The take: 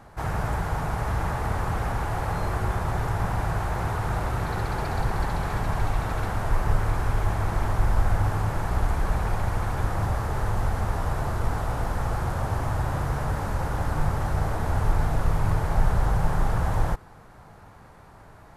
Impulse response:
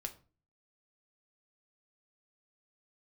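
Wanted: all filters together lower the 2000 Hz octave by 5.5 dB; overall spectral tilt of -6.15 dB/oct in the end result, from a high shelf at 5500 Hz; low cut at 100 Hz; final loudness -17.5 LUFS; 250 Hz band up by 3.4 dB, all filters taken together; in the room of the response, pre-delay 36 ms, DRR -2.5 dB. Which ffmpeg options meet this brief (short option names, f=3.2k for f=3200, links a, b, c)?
-filter_complex "[0:a]highpass=100,equalizer=f=250:t=o:g=6,equalizer=f=2k:t=o:g=-7,highshelf=f=5.5k:g=-7.5,asplit=2[a][b];[1:a]atrim=start_sample=2205,adelay=36[c];[b][c]afir=irnorm=-1:irlink=0,volume=4.5dB[d];[a][d]amix=inputs=2:normalize=0,volume=7.5dB"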